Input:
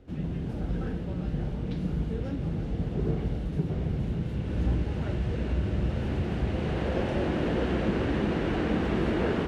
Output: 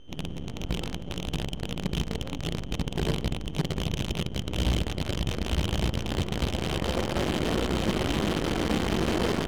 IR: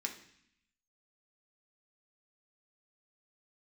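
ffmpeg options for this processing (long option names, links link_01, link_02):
-af "equalizer=frequency=1600:width=6.6:gain=-6.5,aeval=exprs='val(0)+0.0141*sin(2*PI*3100*n/s)':channel_layout=same,acrusher=bits=5:dc=4:mix=0:aa=0.000001,adynamicsmooth=sensitivity=3.5:basefreq=1000"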